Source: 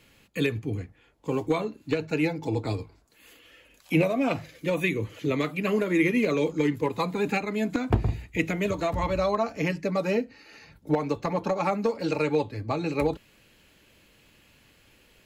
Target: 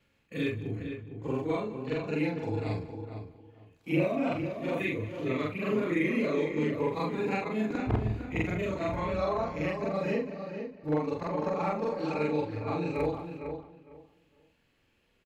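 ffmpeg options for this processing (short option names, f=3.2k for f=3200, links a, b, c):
-filter_complex "[0:a]afftfilt=real='re':imag='-im':win_size=4096:overlap=0.75,highshelf=f=5.7k:g=-11,asplit=2[a][b];[b]aecho=0:1:191:0.119[c];[a][c]amix=inputs=2:normalize=0,agate=range=-31dB:threshold=-54dB:ratio=16:detection=peak,acompressor=mode=upward:threshold=-51dB:ratio=2.5,asplit=2[d][e];[e]adelay=456,lowpass=f=2.4k:p=1,volume=-7.5dB,asplit=2[f][g];[g]adelay=456,lowpass=f=2.4k:p=1,volume=0.2,asplit=2[h][i];[i]adelay=456,lowpass=f=2.4k:p=1,volume=0.2[j];[f][h][j]amix=inputs=3:normalize=0[k];[d][k]amix=inputs=2:normalize=0"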